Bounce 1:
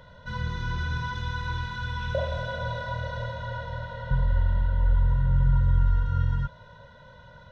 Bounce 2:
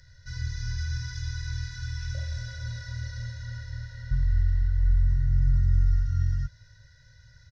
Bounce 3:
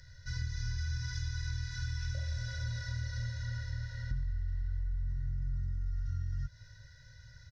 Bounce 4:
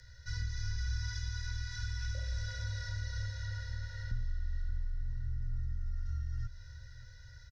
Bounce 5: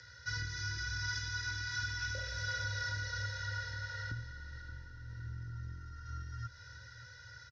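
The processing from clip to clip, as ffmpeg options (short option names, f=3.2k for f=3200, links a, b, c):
-af "firequalizer=gain_entry='entry(120,0);entry(180,-24);entry(300,-17);entry(480,-23);entry(690,-24);entry(1100,-28);entry(1700,1);entry(3200,-16);entry(4900,14);entry(10000,-3)':delay=0.05:min_phase=1"
-af "alimiter=limit=-19.5dB:level=0:latency=1:release=47,acompressor=threshold=-32dB:ratio=6"
-af "afreqshift=-16,aecho=1:1:576|1152|1728|2304:0.211|0.0824|0.0321|0.0125"
-af "highpass=170,equalizer=f=210:t=q:w=4:g=-9,equalizer=f=330:t=q:w=4:g=5,equalizer=f=650:t=q:w=4:g=-7,equalizer=f=1.3k:t=q:w=4:g=8,equalizer=f=1.8k:t=q:w=4:g=-4,equalizer=f=4k:t=q:w=4:g=-4,lowpass=f=6k:w=0.5412,lowpass=f=6k:w=1.3066,volume=7.5dB"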